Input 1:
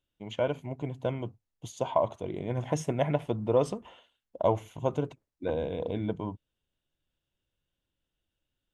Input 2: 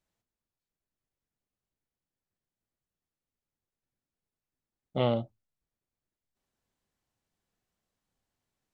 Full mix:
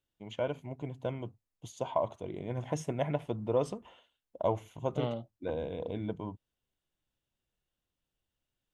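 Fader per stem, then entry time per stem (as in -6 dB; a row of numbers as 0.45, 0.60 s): -4.5, -8.5 dB; 0.00, 0.00 s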